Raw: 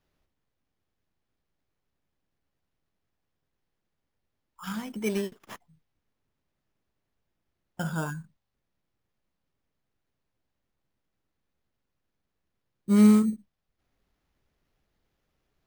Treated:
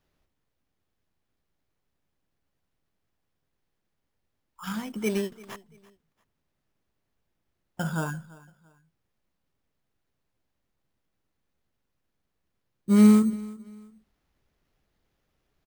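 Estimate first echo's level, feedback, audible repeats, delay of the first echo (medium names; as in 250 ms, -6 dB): -21.0 dB, 31%, 2, 340 ms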